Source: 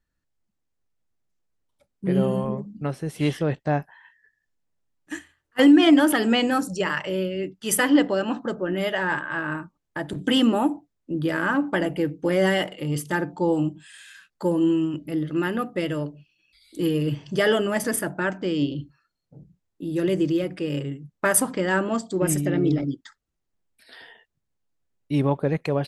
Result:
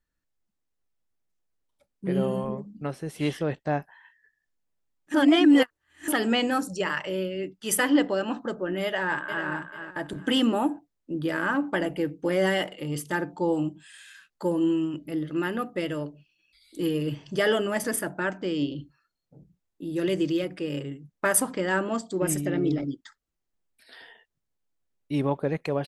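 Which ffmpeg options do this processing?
ffmpeg -i in.wav -filter_complex "[0:a]asplit=2[link_01][link_02];[link_02]afade=type=in:start_time=8.84:duration=0.01,afade=type=out:start_time=9.46:duration=0.01,aecho=0:1:440|880|1320:0.375837|0.0939594|0.0234898[link_03];[link_01][link_03]amix=inputs=2:normalize=0,asettb=1/sr,asplit=3[link_04][link_05][link_06];[link_04]atrim=end=20.014[link_07];[link_05]atrim=start=20.01:end=20.45,asetpts=PTS-STARTPTS,afade=type=in:duration=0.004:curve=qsin,afade=type=out:start_time=0.436:duration=0.004:curve=qsin,equalizer=frequency=3800:width_type=o:width=2.3:gain=4.5[link_08];[link_06]atrim=start=20.446[link_09];[link_07][link_08]acrossfade=duration=0.004:curve1=hsin:curve2=qsin[link_10];[link_10][link_09]acrossfade=duration=0.004:curve1=qsin:curve2=hsin,asplit=3[link_11][link_12][link_13];[link_11]atrim=end=5.142[link_14];[link_12]atrim=start=5.138:end=6.082,asetpts=PTS-STARTPTS,areverse[link_15];[link_13]atrim=start=6.078[link_16];[link_14][link_15]acrossfade=duration=0.004:curve1=hsin:curve2=hsin[link_17];[link_17][link_16]acrossfade=duration=0.004:curve1=hsin:curve2=hsin,equalizer=frequency=110:width=0.86:gain=-4.5,volume=-2.5dB" out.wav

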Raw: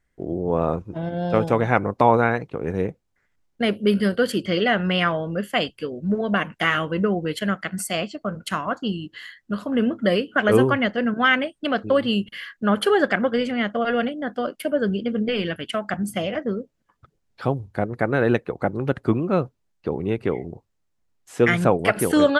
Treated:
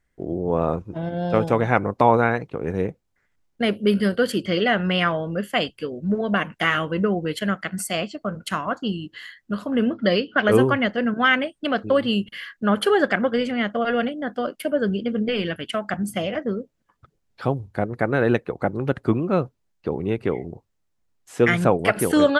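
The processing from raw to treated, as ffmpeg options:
ffmpeg -i in.wav -filter_complex "[0:a]asettb=1/sr,asplit=3[link_01][link_02][link_03];[link_01]atrim=end=9.944[link_04];[link_02]atrim=start=9.94:end=10.48,asetpts=PTS-STARTPTS,afade=type=in:duration=0.004:curve=qsin,afade=type=out:start_time=0.536:duration=0.004:curve=qsin,highshelf=frequency=6300:width_type=q:width=3:gain=-10[link_05];[link_03]atrim=start=10.476[link_06];[link_04][link_05]acrossfade=duration=0.004:curve1=hsin:curve2=qsin[link_07];[link_07][link_06]acrossfade=duration=0.004:curve1=qsin:curve2=hsin" out.wav

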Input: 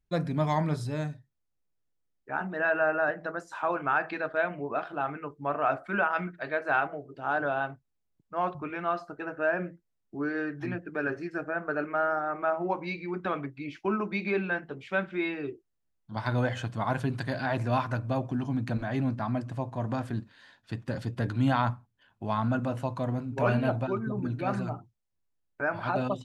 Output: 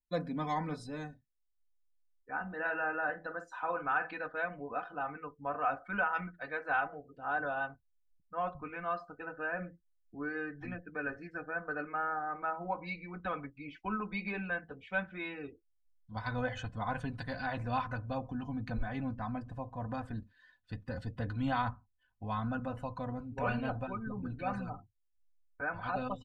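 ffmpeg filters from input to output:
ffmpeg -i in.wav -filter_complex "[0:a]asettb=1/sr,asplit=3[link_01][link_02][link_03];[link_01]atrim=end=2.424[link_04];[link_02]atrim=start=2.42:end=4.11,asetpts=PTS-STARTPTS,afade=type=in:duration=0.004:curve=qsin,afade=type=out:start_time=1.686:duration=0.004:curve=qsin,asplit=2[link_05][link_06];[link_06]adelay=48,volume=-12dB[link_07];[link_05][link_07]amix=inputs=2:normalize=0,atrim=end_sample=74529[link_08];[link_03]atrim=start=4.106[link_09];[link_04][link_08]acrossfade=duration=0.004:curve1=hsin:curve2=qsin[link_10];[link_10][link_09]acrossfade=duration=0.004:curve1=qsin:curve2=hsin,afftdn=noise_reduction=13:noise_floor=-52,asubboost=boost=11:cutoff=73,aecho=1:1:4:0.74,volume=-7dB" out.wav

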